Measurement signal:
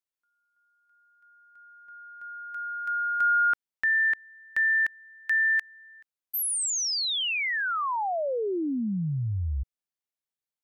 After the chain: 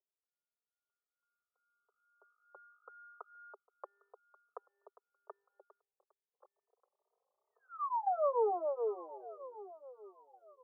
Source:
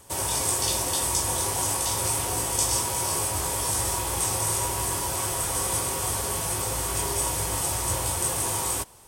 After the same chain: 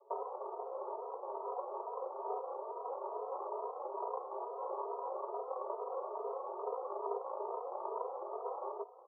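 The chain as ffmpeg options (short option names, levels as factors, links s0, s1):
-filter_complex "[0:a]bandreject=f=810:w=24,acompressor=threshold=0.0224:ratio=16:attack=13:release=141:knee=6:detection=peak,aeval=exprs='val(0)+0.000447*(sin(2*PI*50*n/s)+sin(2*PI*2*50*n/s)/2+sin(2*PI*3*50*n/s)/3+sin(2*PI*4*50*n/s)/4+sin(2*PI*5*50*n/s)/5)':c=same,aeval=exprs='0.1*(cos(1*acos(clip(val(0)/0.1,-1,1)))-cos(1*PI/2))+0.00631*(cos(7*acos(clip(val(0)/0.1,-1,1)))-cos(7*PI/2))+0.0178*(cos(8*acos(clip(val(0)/0.1,-1,1)))-cos(8*PI/2))':c=same,adynamicsmooth=sensitivity=1.5:basefreq=590,asuperpass=centerf=700:order=20:qfactor=0.81,asplit=2[s0][s1];[s1]aecho=0:1:1134|2268:0.133|0.036[s2];[s0][s2]amix=inputs=2:normalize=0,asplit=2[s3][s4];[s4]adelay=3,afreqshift=2.3[s5];[s3][s5]amix=inputs=2:normalize=1,volume=3.16"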